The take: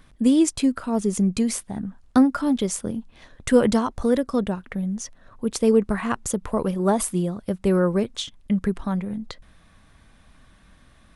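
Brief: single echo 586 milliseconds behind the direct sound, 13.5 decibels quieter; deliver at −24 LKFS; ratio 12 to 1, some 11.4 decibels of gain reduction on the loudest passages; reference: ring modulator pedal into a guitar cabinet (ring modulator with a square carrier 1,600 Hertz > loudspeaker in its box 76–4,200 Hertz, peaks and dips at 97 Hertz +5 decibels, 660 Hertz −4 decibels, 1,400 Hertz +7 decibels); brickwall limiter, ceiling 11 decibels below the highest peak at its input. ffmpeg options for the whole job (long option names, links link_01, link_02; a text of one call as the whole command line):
ffmpeg -i in.wav -af "acompressor=threshold=-23dB:ratio=12,alimiter=limit=-21.5dB:level=0:latency=1,aecho=1:1:586:0.211,aeval=exprs='val(0)*sgn(sin(2*PI*1600*n/s))':channel_layout=same,highpass=76,equalizer=frequency=97:width_type=q:width=4:gain=5,equalizer=frequency=660:width_type=q:width=4:gain=-4,equalizer=frequency=1400:width_type=q:width=4:gain=7,lowpass=frequency=4200:width=0.5412,lowpass=frequency=4200:width=1.3066,volume=2.5dB" out.wav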